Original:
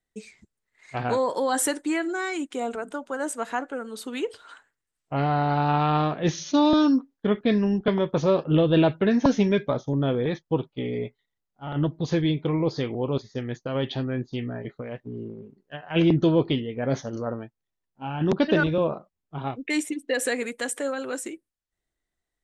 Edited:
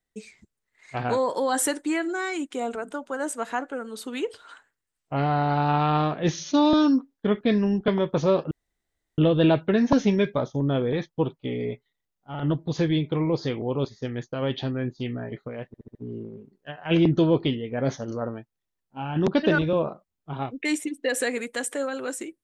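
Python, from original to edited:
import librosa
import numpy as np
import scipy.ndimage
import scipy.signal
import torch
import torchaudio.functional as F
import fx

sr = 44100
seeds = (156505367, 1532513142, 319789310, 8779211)

y = fx.edit(x, sr, fx.insert_room_tone(at_s=8.51, length_s=0.67),
    fx.stutter(start_s=15.0, slice_s=0.07, count=5), tone=tone)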